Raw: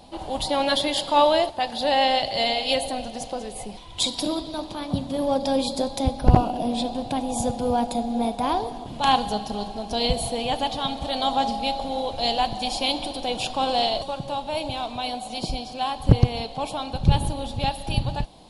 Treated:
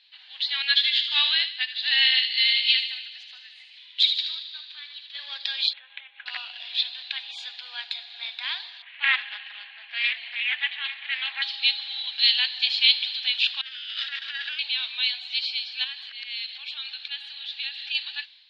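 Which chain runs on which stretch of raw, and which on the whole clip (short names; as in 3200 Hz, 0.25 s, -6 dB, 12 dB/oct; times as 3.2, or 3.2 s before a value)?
0.62–5.15 HPF 410 Hz + thin delay 76 ms, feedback 60%, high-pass 2200 Hz, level -5 dB + upward expander, over -32 dBFS
5.73–6.26 elliptic low-pass 2900 Hz, stop band 50 dB + compressor 4:1, threshold -30 dBFS + notch 360 Hz, Q 5.2
8.82–11.42 Chebyshev band-pass 240–2600 Hz, order 3 + bell 2000 Hz +7 dB 0.55 oct + Doppler distortion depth 0.22 ms
13.61–14.59 minimum comb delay 0.34 ms + notch 720 Hz, Q 13 + negative-ratio compressor -32 dBFS, ratio -0.5
15.84–17.95 HPF 280 Hz + bell 1000 Hz -5 dB 0.39 oct + compressor 4:1, threshold -32 dBFS
whole clip: elliptic band-pass 1700–4200 Hz, stop band 80 dB; AGC gain up to 9.5 dB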